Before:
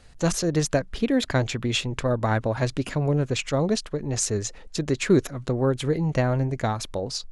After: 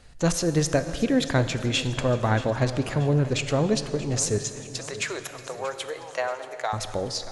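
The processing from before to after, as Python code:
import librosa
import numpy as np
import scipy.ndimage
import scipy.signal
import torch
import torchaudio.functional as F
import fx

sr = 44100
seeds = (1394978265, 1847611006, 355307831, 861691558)

y = fx.highpass(x, sr, hz=580.0, slope=24, at=(4.38, 6.73))
y = fx.echo_feedback(y, sr, ms=632, feedback_pct=50, wet_db=-16)
y = fx.rev_plate(y, sr, seeds[0], rt60_s=2.9, hf_ratio=0.8, predelay_ms=0, drr_db=10.0)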